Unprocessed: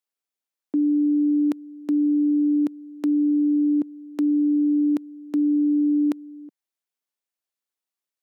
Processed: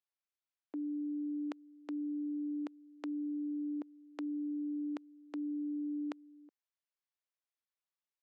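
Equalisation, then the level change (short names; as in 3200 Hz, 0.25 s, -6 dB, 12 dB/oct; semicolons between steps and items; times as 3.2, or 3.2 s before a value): HPF 600 Hz 12 dB/oct; air absorption 120 m; -5.0 dB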